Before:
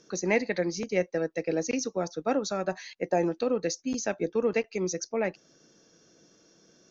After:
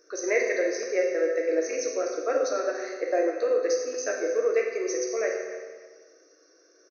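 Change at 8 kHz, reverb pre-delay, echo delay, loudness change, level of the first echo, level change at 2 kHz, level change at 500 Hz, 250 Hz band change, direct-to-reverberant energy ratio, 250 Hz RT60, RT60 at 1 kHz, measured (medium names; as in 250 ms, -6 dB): no reading, 8 ms, 292 ms, +2.5 dB, -15.0 dB, +3.0 dB, +4.5 dB, -4.0 dB, -1.0 dB, 1.5 s, 1.5 s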